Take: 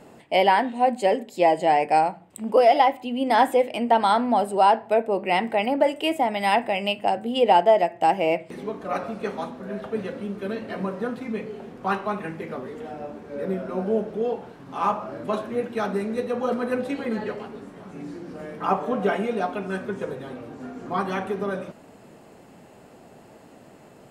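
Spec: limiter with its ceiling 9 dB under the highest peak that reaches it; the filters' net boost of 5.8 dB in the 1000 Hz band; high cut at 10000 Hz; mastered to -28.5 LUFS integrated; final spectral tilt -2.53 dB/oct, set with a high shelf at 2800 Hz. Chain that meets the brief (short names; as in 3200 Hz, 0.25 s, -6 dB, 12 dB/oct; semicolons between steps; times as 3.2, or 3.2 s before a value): LPF 10000 Hz; bell 1000 Hz +7 dB; high shelf 2800 Hz +8 dB; gain -6 dB; limiter -15 dBFS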